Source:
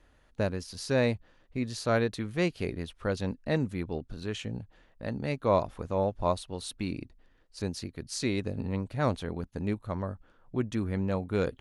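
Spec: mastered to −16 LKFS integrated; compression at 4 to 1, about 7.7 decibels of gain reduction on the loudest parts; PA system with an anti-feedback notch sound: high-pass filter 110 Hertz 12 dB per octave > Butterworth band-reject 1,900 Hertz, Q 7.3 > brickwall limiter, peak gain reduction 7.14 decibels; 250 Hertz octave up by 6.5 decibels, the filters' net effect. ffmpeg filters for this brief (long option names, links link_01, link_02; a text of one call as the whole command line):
ffmpeg -i in.wav -af "equalizer=frequency=250:width_type=o:gain=8.5,acompressor=threshold=-27dB:ratio=4,highpass=110,asuperstop=centerf=1900:order=8:qfactor=7.3,volume=19.5dB,alimiter=limit=-3.5dB:level=0:latency=1" out.wav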